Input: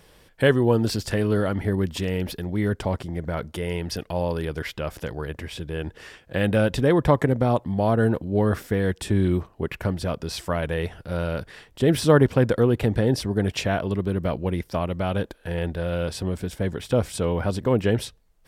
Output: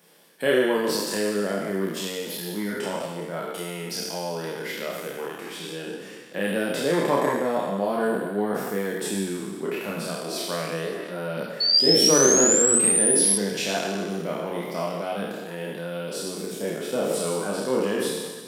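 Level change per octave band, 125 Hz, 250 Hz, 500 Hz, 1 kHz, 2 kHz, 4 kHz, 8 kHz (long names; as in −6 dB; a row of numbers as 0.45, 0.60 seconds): −13.0, −3.5, −1.0, −0.5, 0.0, +9.0, +18.0 decibels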